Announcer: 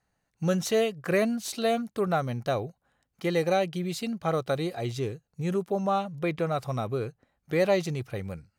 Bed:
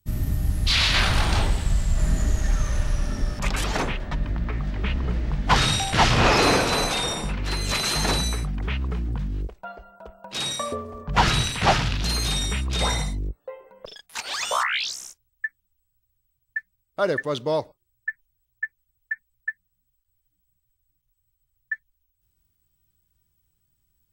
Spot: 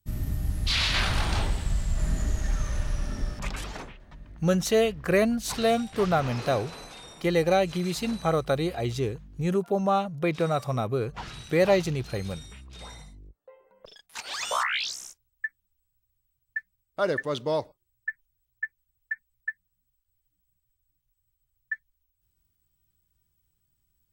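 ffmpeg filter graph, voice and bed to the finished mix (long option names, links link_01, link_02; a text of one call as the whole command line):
ffmpeg -i stem1.wav -i stem2.wav -filter_complex "[0:a]adelay=4000,volume=2.5dB[link_01];[1:a]volume=12dB,afade=type=out:start_time=3.25:duration=0.69:silence=0.177828,afade=type=in:start_time=13.3:duration=1.34:silence=0.141254[link_02];[link_01][link_02]amix=inputs=2:normalize=0" out.wav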